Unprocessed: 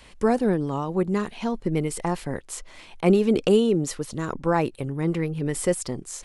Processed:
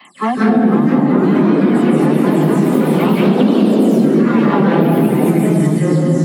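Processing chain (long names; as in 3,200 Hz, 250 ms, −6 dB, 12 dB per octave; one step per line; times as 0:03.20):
every frequency bin delayed by itself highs early, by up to 165 ms
notch comb filter 480 Hz
hard clipping −17.5 dBFS, distortion −14 dB
convolution reverb RT60 3.5 s, pre-delay 144 ms, DRR −5.5 dB
delay with pitch and tempo change per echo 535 ms, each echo +3 semitones, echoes 3
high-shelf EQ 10,000 Hz +9 dB
mains-hum notches 60/120/180/240 Hz
downward compressor 10 to 1, threshold −10 dBFS, peak gain reduction 14 dB
Butterworth high-pass 150 Hz
parametric band 6,300 Hz −9.5 dB 0.84 octaves
level +2 dB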